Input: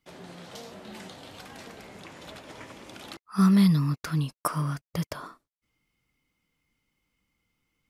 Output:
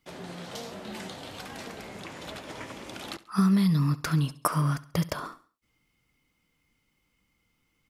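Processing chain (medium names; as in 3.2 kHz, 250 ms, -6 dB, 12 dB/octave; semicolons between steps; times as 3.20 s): compression 6:1, threshold -24 dBFS, peak gain reduction 8 dB; on a send: feedback delay 68 ms, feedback 42%, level -18 dB; on the sum: trim +4 dB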